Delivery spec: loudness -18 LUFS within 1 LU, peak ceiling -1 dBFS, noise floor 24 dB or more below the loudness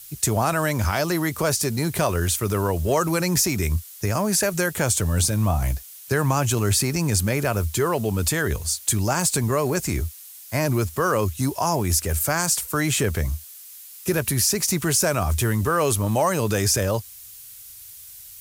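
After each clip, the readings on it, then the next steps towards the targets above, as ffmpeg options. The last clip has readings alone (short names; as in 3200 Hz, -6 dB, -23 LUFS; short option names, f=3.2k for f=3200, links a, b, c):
noise floor -43 dBFS; noise floor target -47 dBFS; loudness -22.5 LUFS; peak -6.5 dBFS; loudness target -18.0 LUFS
-> -af "afftdn=nr=6:nf=-43"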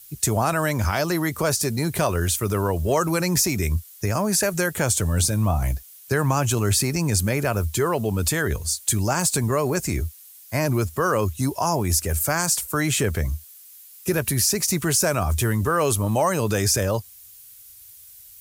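noise floor -46 dBFS; noise floor target -47 dBFS
-> -af "afftdn=nr=6:nf=-46"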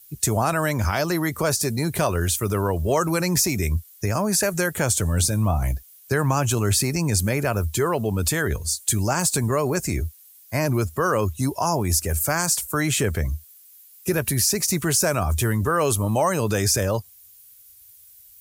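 noise floor -50 dBFS; loudness -22.5 LUFS; peak -6.5 dBFS; loudness target -18.0 LUFS
-> -af "volume=4.5dB"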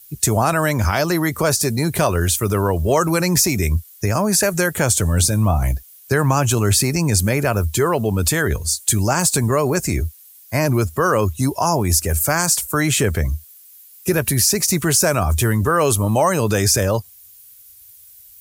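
loudness -18.0 LUFS; peak -2.0 dBFS; noise floor -45 dBFS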